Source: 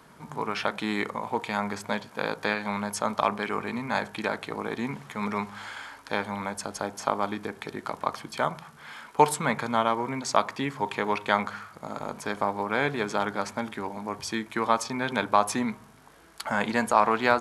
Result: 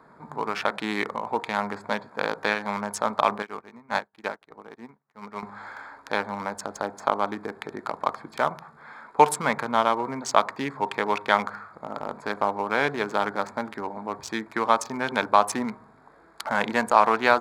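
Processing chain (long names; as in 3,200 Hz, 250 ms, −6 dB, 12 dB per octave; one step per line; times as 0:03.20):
adaptive Wiener filter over 15 samples
low-shelf EQ 230 Hz −10 dB
0:03.42–0:05.43: expander for the loud parts 2.5 to 1, over −51 dBFS
level +4 dB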